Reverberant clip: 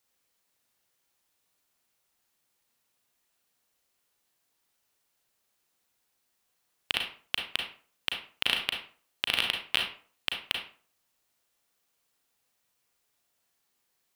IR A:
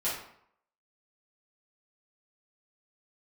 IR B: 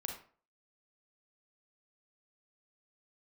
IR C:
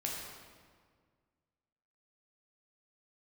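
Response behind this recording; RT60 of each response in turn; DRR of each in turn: B; 0.70, 0.45, 1.8 s; -10.5, 1.5, -3.0 dB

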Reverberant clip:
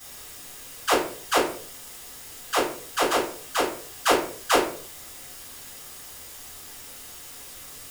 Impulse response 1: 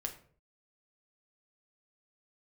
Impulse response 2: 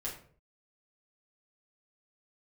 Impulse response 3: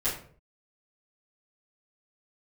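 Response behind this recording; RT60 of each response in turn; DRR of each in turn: 3; 0.50, 0.50, 0.50 s; 3.0, -5.5, -12.0 dB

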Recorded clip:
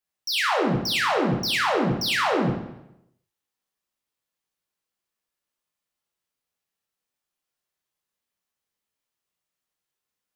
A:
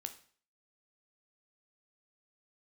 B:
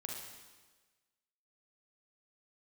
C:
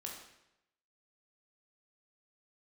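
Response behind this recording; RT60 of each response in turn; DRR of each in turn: C; 0.45, 1.3, 0.85 s; 7.5, -1.0, -1.5 dB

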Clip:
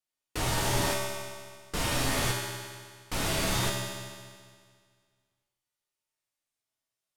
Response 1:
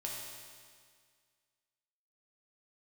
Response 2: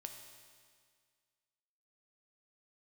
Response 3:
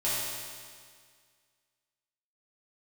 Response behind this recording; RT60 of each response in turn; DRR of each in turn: 1; 1.9, 1.9, 1.9 s; -3.5, 3.5, -11.0 dB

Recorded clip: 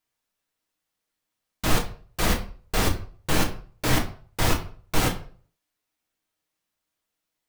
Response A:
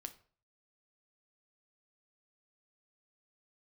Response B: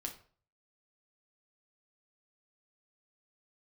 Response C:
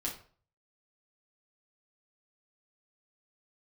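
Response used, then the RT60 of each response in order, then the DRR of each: B; 0.45, 0.45, 0.45 s; 7.5, 1.5, -4.0 dB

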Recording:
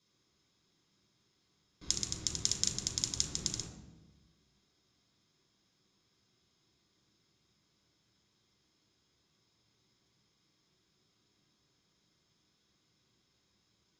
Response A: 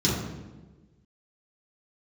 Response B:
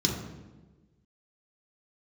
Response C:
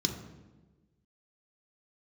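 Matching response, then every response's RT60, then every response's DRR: B; 1.3, 1.3, 1.3 s; -8.0, -1.5, 3.0 dB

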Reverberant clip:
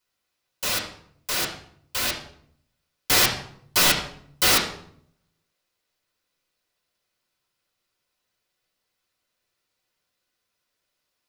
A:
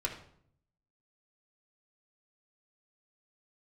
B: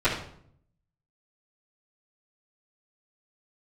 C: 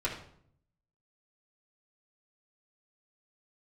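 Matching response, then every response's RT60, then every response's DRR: C; 0.65, 0.65, 0.65 s; -1.5, -14.5, -6.0 dB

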